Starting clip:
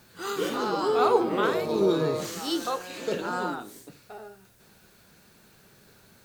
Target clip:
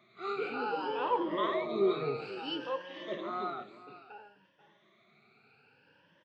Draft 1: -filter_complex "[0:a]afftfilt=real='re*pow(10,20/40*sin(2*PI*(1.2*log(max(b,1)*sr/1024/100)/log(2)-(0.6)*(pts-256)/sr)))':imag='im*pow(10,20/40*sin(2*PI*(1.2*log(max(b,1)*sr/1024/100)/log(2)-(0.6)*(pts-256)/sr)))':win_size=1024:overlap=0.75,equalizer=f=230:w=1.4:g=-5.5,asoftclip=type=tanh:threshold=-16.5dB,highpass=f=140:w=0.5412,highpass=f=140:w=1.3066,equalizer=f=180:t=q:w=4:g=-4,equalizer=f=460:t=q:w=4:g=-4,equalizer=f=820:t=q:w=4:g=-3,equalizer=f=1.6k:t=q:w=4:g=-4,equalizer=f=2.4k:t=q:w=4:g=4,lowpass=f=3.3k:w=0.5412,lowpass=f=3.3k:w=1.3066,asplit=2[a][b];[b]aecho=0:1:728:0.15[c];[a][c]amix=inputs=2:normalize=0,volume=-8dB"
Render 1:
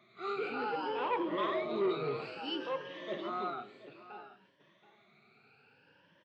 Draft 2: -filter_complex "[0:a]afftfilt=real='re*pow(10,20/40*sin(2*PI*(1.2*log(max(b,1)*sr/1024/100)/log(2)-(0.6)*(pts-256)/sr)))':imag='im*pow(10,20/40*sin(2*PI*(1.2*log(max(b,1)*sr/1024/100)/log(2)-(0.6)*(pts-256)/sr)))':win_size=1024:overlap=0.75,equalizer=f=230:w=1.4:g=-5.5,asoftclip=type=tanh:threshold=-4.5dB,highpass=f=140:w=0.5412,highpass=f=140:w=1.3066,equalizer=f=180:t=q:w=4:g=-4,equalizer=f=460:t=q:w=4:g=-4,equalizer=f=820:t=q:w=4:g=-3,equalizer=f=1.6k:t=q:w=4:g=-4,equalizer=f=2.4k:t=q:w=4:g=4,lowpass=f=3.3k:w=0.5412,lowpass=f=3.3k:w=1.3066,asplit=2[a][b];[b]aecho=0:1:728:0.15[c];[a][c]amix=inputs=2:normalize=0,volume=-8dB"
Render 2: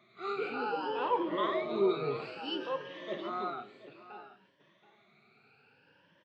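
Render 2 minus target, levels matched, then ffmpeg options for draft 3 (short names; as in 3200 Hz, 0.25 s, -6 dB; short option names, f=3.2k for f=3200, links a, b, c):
echo 0.241 s late
-filter_complex "[0:a]afftfilt=real='re*pow(10,20/40*sin(2*PI*(1.2*log(max(b,1)*sr/1024/100)/log(2)-(0.6)*(pts-256)/sr)))':imag='im*pow(10,20/40*sin(2*PI*(1.2*log(max(b,1)*sr/1024/100)/log(2)-(0.6)*(pts-256)/sr)))':win_size=1024:overlap=0.75,equalizer=f=230:w=1.4:g=-5.5,asoftclip=type=tanh:threshold=-4.5dB,highpass=f=140:w=0.5412,highpass=f=140:w=1.3066,equalizer=f=180:t=q:w=4:g=-4,equalizer=f=460:t=q:w=4:g=-4,equalizer=f=820:t=q:w=4:g=-3,equalizer=f=1.6k:t=q:w=4:g=-4,equalizer=f=2.4k:t=q:w=4:g=4,lowpass=f=3.3k:w=0.5412,lowpass=f=3.3k:w=1.3066,asplit=2[a][b];[b]aecho=0:1:487:0.15[c];[a][c]amix=inputs=2:normalize=0,volume=-8dB"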